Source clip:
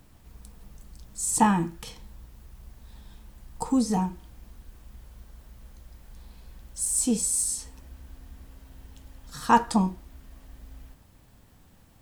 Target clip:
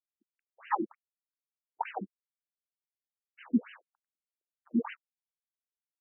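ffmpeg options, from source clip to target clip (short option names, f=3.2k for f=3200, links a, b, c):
-af "acrusher=bits=4:mix=0:aa=0.5,atempo=2,afftfilt=real='re*between(b*sr/1024,270*pow(2200/270,0.5+0.5*sin(2*PI*3.3*pts/sr))/1.41,270*pow(2200/270,0.5+0.5*sin(2*PI*3.3*pts/sr))*1.41)':imag='im*between(b*sr/1024,270*pow(2200/270,0.5+0.5*sin(2*PI*3.3*pts/sr))/1.41,270*pow(2200/270,0.5+0.5*sin(2*PI*3.3*pts/sr))*1.41)':win_size=1024:overlap=0.75,volume=1.5dB"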